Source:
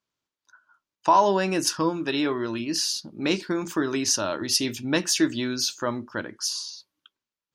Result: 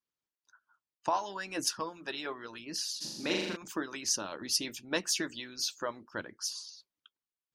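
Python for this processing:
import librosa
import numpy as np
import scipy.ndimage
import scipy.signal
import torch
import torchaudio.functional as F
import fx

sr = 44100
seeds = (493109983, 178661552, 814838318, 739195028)

y = fx.hpss(x, sr, part='harmonic', gain_db=-17)
y = fx.room_flutter(y, sr, wall_m=7.0, rt60_s=1.1, at=(3.0, 3.55), fade=0.02)
y = y * librosa.db_to_amplitude(-6.0)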